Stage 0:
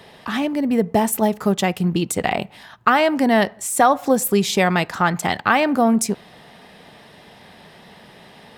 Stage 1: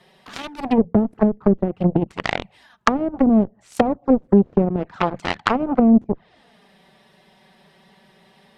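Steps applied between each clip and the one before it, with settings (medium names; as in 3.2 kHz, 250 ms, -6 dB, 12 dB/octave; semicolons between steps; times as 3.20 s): touch-sensitive flanger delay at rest 6 ms, full sweep at -15 dBFS; Chebyshev shaper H 7 -15 dB, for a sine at -6 dBFS; low-pass that closes with the level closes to 350 Hz, closed at -17 dBFS; trim +6 dB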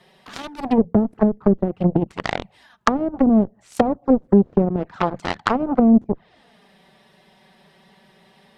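dynamic bell 2.5 kHz, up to -5 dB, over -42 dBFS, Q 1.7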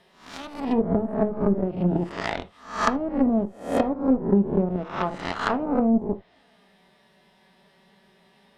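reverse spectral sustain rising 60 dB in 0.48 s; reverberation, pre-delay 3 ms, DRR 8.5 dB; trim -7 dB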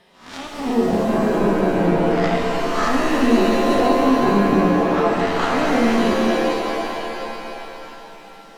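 peak limiter -17.5 dBFS, peak gain reduction 10.5 dB; pitch-shifted reverb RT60 3.3 s, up +7 st, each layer -2 dB, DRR -1 dB; trim +4 dB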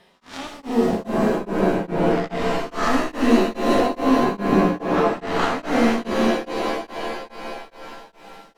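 tremolo of two beating tones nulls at 2.4 Hz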